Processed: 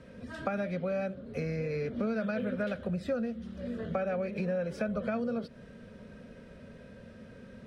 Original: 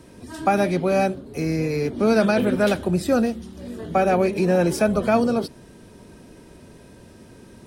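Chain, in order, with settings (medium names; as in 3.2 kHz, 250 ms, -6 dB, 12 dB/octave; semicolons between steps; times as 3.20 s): FFT filter 140 Hz 0 dB, 230 Hz +5 dB, 330 Hz -12 dB, 520 Hz +8 dB, 870 Hz -8 dB, 1.4 kHz +5 dB, 3.5 kHz -2 dB, 12 kHz -19 dB; compression 6:1, threshold -25 dBFS, peak gain reduction 14.5 dB; trim -5 dB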